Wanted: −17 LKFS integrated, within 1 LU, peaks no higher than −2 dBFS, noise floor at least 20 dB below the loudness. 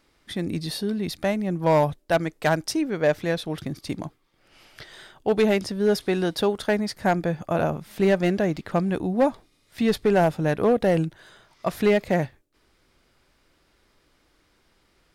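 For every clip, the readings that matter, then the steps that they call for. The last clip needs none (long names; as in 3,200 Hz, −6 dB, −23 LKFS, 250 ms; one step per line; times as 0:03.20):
share of clipped samples 0.7%; peaks flattened at −13.0 dBFS; integrated loudness −24.0 LKFS; sample peak −13.0 dBFS; target loudness −17.0 LKFS
→ clipped peaks rebuilt −13 dBFS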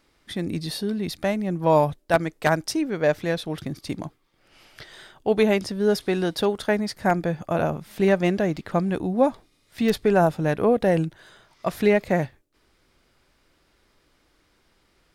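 share of clipped samples 0.0%; integrated loudness −24.0 LKFS; sample peak −4.0 dBFS; target loudness −17.0 LKFS
→ level +7 dB
brickwall limiter −2 dBFS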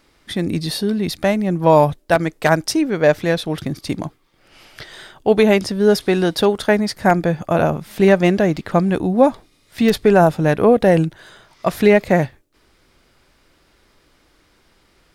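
integrated loudness −17.0 LKFS; sample peak −2.0 dBFS; background noise floor −58 dBFS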